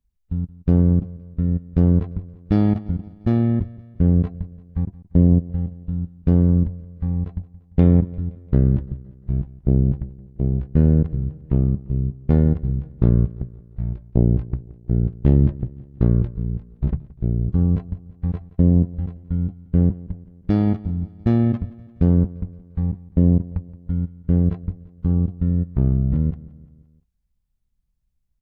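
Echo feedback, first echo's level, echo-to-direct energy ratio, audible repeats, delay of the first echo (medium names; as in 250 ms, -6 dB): 53%, -20.0 dB, -18.5 dB, 3, 173 ms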